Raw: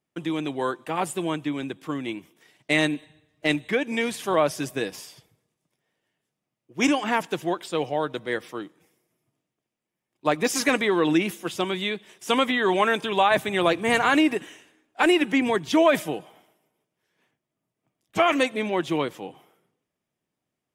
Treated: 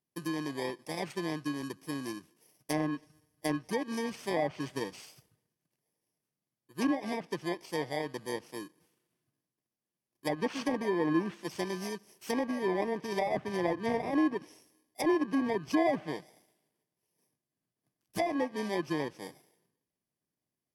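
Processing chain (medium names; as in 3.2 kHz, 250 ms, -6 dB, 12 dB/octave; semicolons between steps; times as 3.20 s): bit-reversed sample order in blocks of 32 samples; low-pass that closes with the level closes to 1.6 kHz, closed at -17.5 dBFS; trim -6 dB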